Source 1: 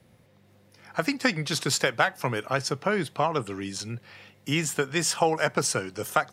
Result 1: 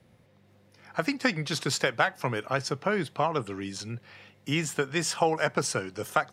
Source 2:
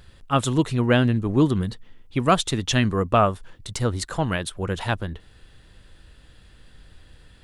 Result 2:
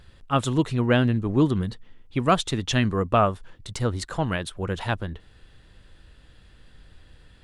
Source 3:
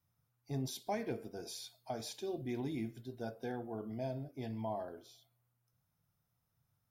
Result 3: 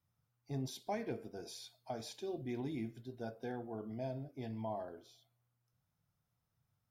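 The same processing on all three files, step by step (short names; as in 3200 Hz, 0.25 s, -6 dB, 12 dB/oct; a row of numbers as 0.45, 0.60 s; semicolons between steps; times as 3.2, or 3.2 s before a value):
high shelf 7800 Hz -7 dB; gain -1.5 dB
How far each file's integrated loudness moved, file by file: -2.0, -1.5, -1.5 LU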